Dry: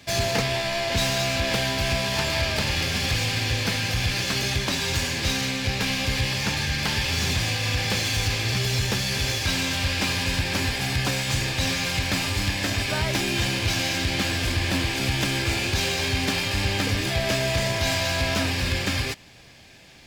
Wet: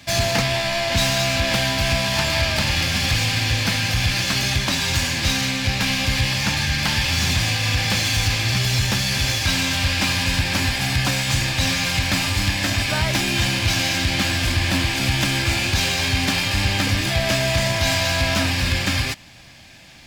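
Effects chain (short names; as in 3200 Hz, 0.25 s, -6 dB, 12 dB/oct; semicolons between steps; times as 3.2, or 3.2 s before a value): bell 430 Hz -11.5 dB 0.41 oct; gain +4.5 dB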